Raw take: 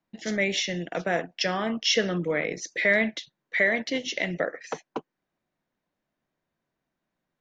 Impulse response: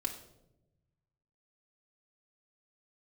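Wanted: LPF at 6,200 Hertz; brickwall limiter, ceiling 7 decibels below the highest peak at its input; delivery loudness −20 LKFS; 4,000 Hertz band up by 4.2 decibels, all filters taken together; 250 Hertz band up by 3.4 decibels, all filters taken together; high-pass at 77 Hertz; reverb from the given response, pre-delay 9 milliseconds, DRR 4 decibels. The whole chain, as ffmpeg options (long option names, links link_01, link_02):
-filter_complex "[0:a]highpass=77,lowpass=6200,equalizer=frequency=250:width_type=o:gain=4.5,equalizer=frequency=4000:width_type=o:gain=6.5,alimiter=limit=-13.5dB:level=0:latency=1,asplit=2[link_01][link_02];[1:a]atrim=start_sample=2205,adelay=9[link_03];[link_02][link_03]afir=irnorm=-1:irlink=0,volume=-5dB[link_04];[link_01][link_04]amix=inputs=2:normalize=0,volume=4.5dB"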